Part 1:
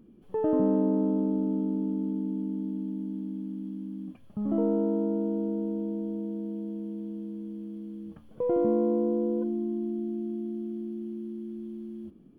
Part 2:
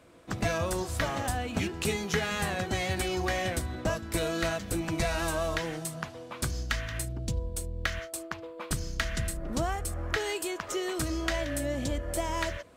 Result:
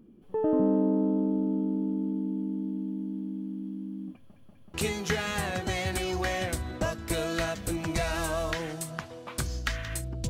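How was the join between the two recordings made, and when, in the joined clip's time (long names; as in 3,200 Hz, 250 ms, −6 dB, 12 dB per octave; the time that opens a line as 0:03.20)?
part 1
0:04.17: stutter in place 0.19 s, 3 plays
0:04.74: continue with part 2 from 0:01.78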